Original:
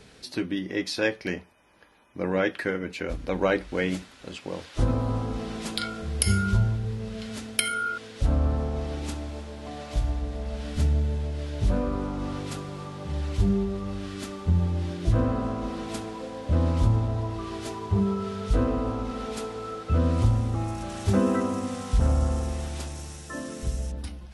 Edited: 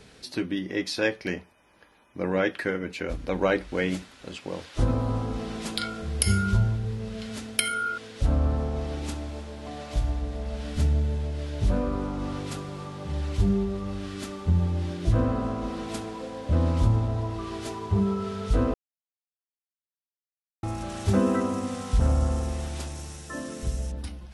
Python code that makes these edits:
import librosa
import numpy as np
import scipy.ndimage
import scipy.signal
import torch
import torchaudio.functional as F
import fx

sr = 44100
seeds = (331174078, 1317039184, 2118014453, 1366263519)

y = fx.edit(x, sr, fx.silence(start_s=18.74, length_s=1.89), tone=tone)